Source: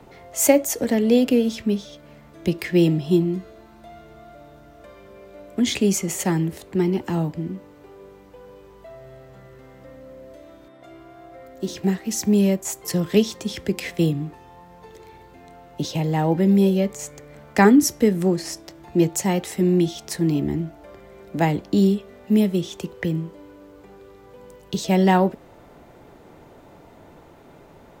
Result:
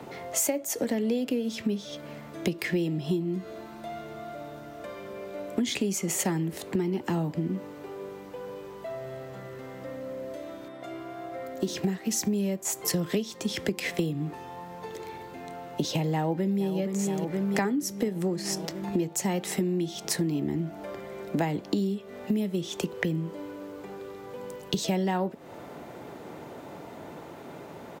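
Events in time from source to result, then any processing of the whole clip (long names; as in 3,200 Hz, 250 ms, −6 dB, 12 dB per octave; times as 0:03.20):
0:16.12–0:16.77: delay throw 470 ms, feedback 65%, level −9.5 dB
whole clip: high-pass filter 130 Hz 12 dB per octave; downward compressor 12 to 1, threshold −30 dBFS; level +5.5 dB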